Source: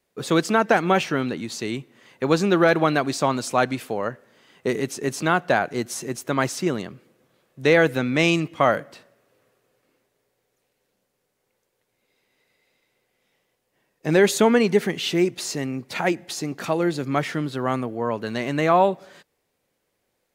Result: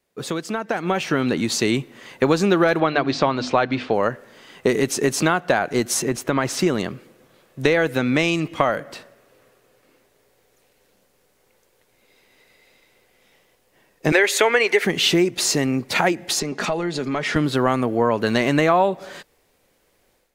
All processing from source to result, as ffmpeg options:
-filter_complex "[0:a]asettb=1/sr,asplit=3[a][b][c];[a]atrim=end=2.804[d];[b]atrim=start=2.8:end=3.94,asetpts=PTS-STARTPTS,afade=t=in:d=0.004:c=qsin,afade=t=out:st=1.136:d=0.004:c=qsin,lowpass=f=4.5k:w=0.5412,lowpass=f=4.5k:w=1.3066,bandreject=f=50:t=h:w=6,bandreject=f=100:t=h:w=6,bandreject=f=150:t=h:w=6,bandreject=f=200:t=h:w=6,bandreject=f=250:t=h:w=6,bandreject=f=300:t=h:w=6[e];[c]atrim=start=3.936[f];[d][e]acrossfade=d=0.004:c1=hsin:c2=qsin[g];[g][f]acrossfade=d=0.004:c1=qsin:c2=hsin,asettb=1/sr,asplit=3[h][i][j];[h]atrim=end=6.024[k];[i]atrim=start=6.02:end=6.59,asetpts=PTS-STARTPTS,afade=t=in:d=0.004:c=qsin,afade=t=out:st=0.566:d=0.004:c=qsin,bass=f=250:g=1,treble=f=4k:g=-7,acompressor=threshold=-24dB:ratio=2.5:attack=3.2:release=140:knee=1:detection=peak[l];[j]atrim=start=6.586[m];[k][l]acrossfade=d=0.004:c1=hsin:c2=qsin[n];[n][m]acrossfade=d=0.004:c1=qsin:c2=hsin,asettb=1/sr,asplit=3[o][p][q];[o]atrim=end=14.124[r];[p]atrim=start=14.12:end=14.85,asetpts=PTS-STARTPTS,afade=t=in:d=0.004:c=qsin,afade=t=out:st=0.726:d=0.004:c=qsin,highpass=f=370:w=0.5412,highpass=f=370:w=1.3066,equalizer=f=2.1k:w=1.6:g=10.5[s];[q]atrim=start=14.846[t];[r][s]acrossfade=d=0.004:c1=hsin:c2=qsin[u];[u][t]acrossfade=d=0.004:c1=qsin:c2=hsin,asettb=1/sr,asplit=3[v][w][x];[v]atrim=end=16.404[y];[w]atrim=start=16.4:end=17.36,asetpts=PTS-STARTPTS,afade=t=in:d=0.004:c=qsin,afade=t=out:st=0.956:d=0.004:c=qsin,highpass=130,lowpass=7.4k,acompressor=threshold=-30dB:ratio=4:attack=3.2:release=140:knee=1:detection=peak,aecho=1:1:4.8:0.44,atrim=end_sample=42336[z];[x]atrim=start=17.356[aa];[y][z]acrossfade=d=0.004:c1=hsin:c2=qsin[ab];[ab][aa]acrossfade=d=0.004:c1=qsin:c2=hsin,acompressor=threshold=-24dB:ratio=6,asubboost=boost=3:cutoff=57,dynaudnorm=f=610:g=3:m=11.5dB"

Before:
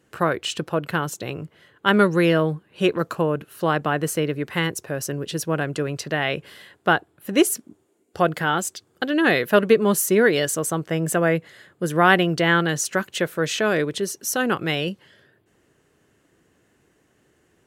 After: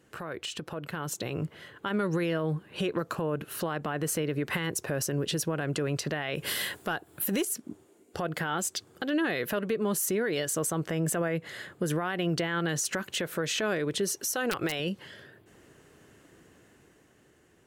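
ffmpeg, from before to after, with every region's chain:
-filter_complex "[0:a]asettb=1/sr,asplit=3[a][b][c];[a]atrim=end=6.354[d];[b]atrim=start=6.35:end=7.45,asetpts=PTS-STARTPTS,afade=t=in:d=0.004:c=qsin,afade=t=out:st=1.096:d=0.004:c=qsin,aemphasis=mode=production:type=50kf,acontrast=22[e];[c]atrim=start=7.446[f];[d][e]acrossfade=d=0.004:c1=hsin:c2=qsin[g];[g][f]acrossfade=d=0.004:c1=qsin:c2=hsin,asettb=1/sr,asplit=3[h][i][j];[h]atrim=end=14.144[k];[i]atrim=start=14.14:end=14.8,asetpts=PTS-STARTPTS,afade=t=in:d=0.004:c=qsin,afade=t=out:st=0.656:d=0.004:c=qsin,equalizer=f=190:t=o:w=0.96:g=-10.5,aeval=exprs='(mod(3.76*val(0)+1,2)-1)/3.76':c=same[l];[j]atrim=start=14.796[m];[k][l]acrossfade=d=0.004:c1=hsin:c2=qsin[n];[n][m]acrossfade=d=0.004:c1=qsin:c2=hsin,acompressor=threshold=-24dB:ratio=6,alimiter=level_in=2.5dB:limit=-24dB:level=0:latency=1:release=130,volume=-2.5dB,dynaudnorm=f=260:g=9:m=6dB"

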